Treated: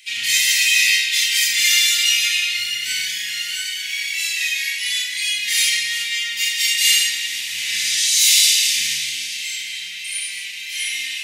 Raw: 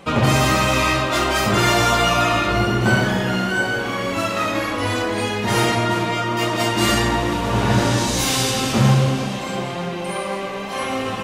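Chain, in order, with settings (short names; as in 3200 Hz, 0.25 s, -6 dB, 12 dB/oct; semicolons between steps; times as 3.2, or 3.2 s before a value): elliptic high-pass 2000 Hz, stop band 40 dB; high shelf 3800 Hz +6.5 dB; Schroeder reverb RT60 0.33 s, combs from 27 ms, DRR -0.5 dB; gain +2 dB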